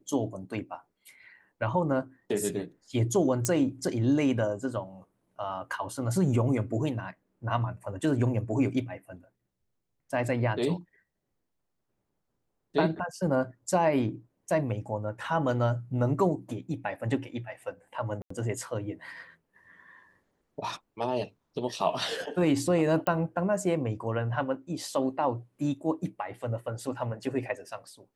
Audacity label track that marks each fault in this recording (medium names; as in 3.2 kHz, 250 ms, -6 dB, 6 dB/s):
3.450000	3.450000	pop -12 dBFS
18.220000	18.300000	dropout 84 ms
23.070000	23.070000	pop -15 dBFS